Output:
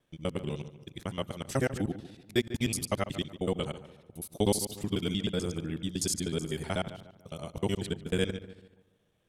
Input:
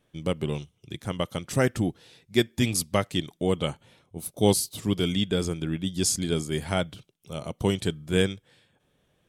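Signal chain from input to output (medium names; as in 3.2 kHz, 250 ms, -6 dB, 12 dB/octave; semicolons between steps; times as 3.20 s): time reversed locally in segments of 62 ms; filtered feedback delay 145 ms, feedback 40%, low-pass 2.4 kHz, level -13 dB; trim -5.5 dB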